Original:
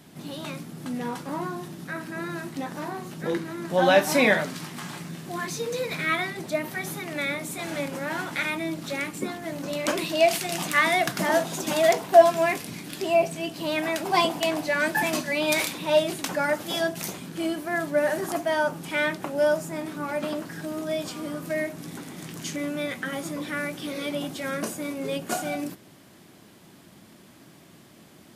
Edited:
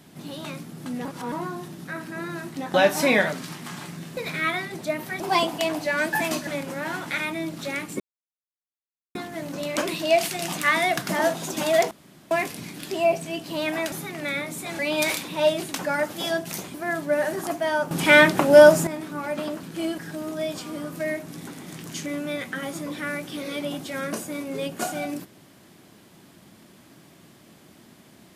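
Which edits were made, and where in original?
0:01.05–0:01.32: reverse
0:02.74–0:03.86: remove
0:05.29–0:05.82: remove
0:06.85–0:07.72: swap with 0:14.02–0:15.29
0:09.25: splice in silence 1.15 s
0:12.01–0:12.41: fill with room tone
0:17.24–0:17.59: move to 0:20.48
0:18.76–0:19.72: clip gain +11.5 dB

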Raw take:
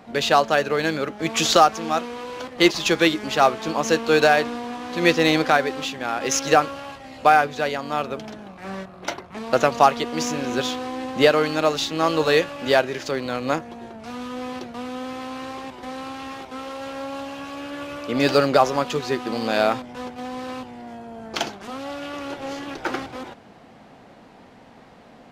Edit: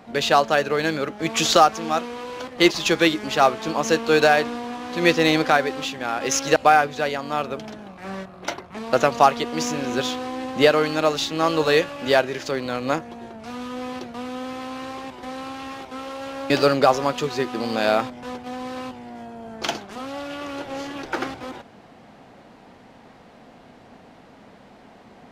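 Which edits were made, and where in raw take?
0:06.56–0:07.16: remove
0:17.10–0:18.22: remove

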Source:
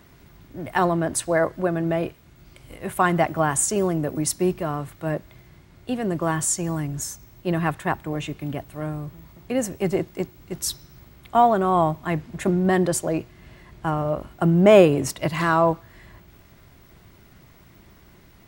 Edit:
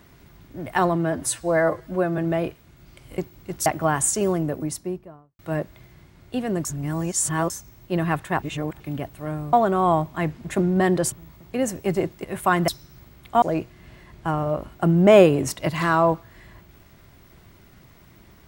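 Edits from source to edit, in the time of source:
0:00.95–0:01.77: time-stretch 1.5×
0:02.77–0:03.21: swap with 0:10.20–0:10.68
0:03.85–0:04.94: fade out and dull
0:06.20–0:07.05: reverse
0:07.97–0:08.35: reverse
0:11.42–0:13.01: move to 0:09.08

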